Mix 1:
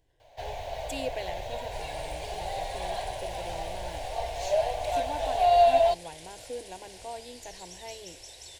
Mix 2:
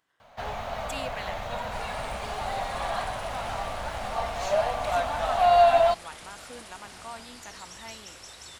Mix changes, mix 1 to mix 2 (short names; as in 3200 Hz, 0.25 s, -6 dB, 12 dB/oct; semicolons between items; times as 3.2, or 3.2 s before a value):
speech: add HPF 1300 Hz 6 dB/oct; master: remove fixed phaser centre 520 Hz, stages 4